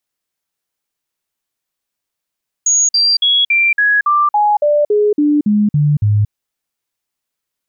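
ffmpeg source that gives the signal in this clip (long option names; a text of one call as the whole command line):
ffmpeg -f lavfi -i "aevalsrc='0.355*clip(min(mod(t,0.28),0.23-mod(t,0.28))/0.005,0,1)*sin(2*PI*6680*pow(2,-floor(t/0.28)/2)*mod(t,0.28))':duration=3.64:sample_rate=44100" out.wav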